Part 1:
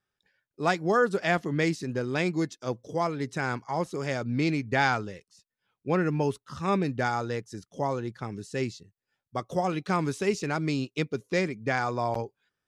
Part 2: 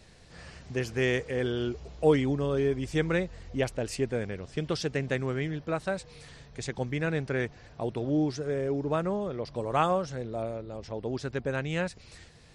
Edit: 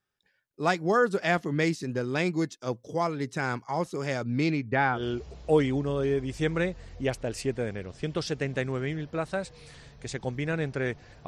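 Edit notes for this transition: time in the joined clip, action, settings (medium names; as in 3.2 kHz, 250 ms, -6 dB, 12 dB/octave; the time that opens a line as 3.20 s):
part 1
4.46–5.03 s: low-pass 6.4 kHz -> 1.1 kHz
4.97 s: go over to part 2 from 1.51 s, crossfade 0.12 s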